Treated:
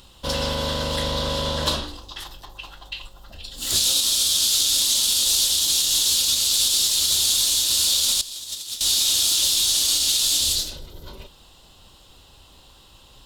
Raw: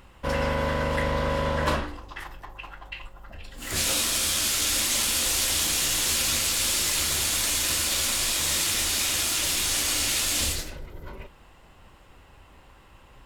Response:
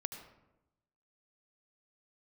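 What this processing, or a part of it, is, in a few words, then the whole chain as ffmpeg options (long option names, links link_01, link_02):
over-bright horn tweeter: -filter_complex "[0:a]highshelf=frequency=2800:width_type=q:width=3:gain=9.5,alimiter=limit=-9.5dB:level=0:latency=1:release=209,asettb=1/sr,asplit=3[link_01][link_02][link_03];[link_01]atrim=end=8.214[link_04];[link_02]atrim=start=8.21:end=8.81,asetpts=PTS-STARTPTS,afade=type=in:duration=0.004:curve=qsin,afade=type=out:start_time=0.596:duration=0.004:curve=qsin,agate=range=-16dB:threshold=-17dB:ratio=16:detection=peak[link_05];[link_03]atrim=start=8.806[link_06];[link_04][link_05]acrossfade=duration=0.004:curve1=hsin:curve2=qsin[link_07];[link_07][link_06]acrossfade=duration=0.004:curve1=qsin:curve2=hsin"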